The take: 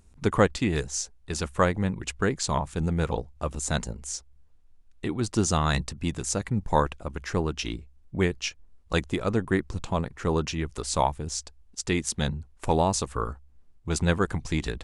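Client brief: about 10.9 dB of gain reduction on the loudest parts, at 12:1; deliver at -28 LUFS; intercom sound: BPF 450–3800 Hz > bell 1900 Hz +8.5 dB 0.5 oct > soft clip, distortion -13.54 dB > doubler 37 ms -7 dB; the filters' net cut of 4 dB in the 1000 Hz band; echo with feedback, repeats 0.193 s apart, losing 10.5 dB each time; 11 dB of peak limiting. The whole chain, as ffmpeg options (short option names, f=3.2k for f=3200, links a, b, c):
-filter_complex "[0:a]equalizer=f=1k:t=o:g=-5.5,acompressor=threshold=-28dB:ratio=12,alimiter=limit=-23.5dB:level=0:latency=1,highpass=450,lowpass=3.8k,equalizer=f=1.9k:t=o:w=0.5:g=8.5,aecho=1:1:193|386|579:0.299|0.0896|0.0269,asoftclip=threshold=-30.5dB,asplit=2[a][b];[b]adelay=37,volume=-7dB[c];[a][c]amix=inputs=2:normalize=0,volume=14dB"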